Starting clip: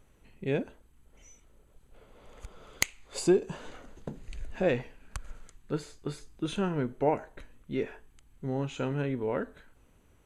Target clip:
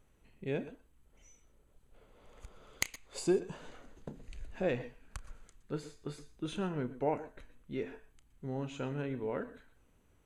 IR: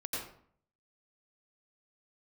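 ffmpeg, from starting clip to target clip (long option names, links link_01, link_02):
-filter_complex "[0:a]asplit=2[link_01][link_02];[1:a]atrim=start_sample=2205,atrim=end_sample=4410,adelay=32[link_03];[link_02][link_03]afir=irnorm=-1:irlink=0,volume=-13dB[link_04];[link_01][link_04]amix=inputs=2:normalize=0,volume=-6dB"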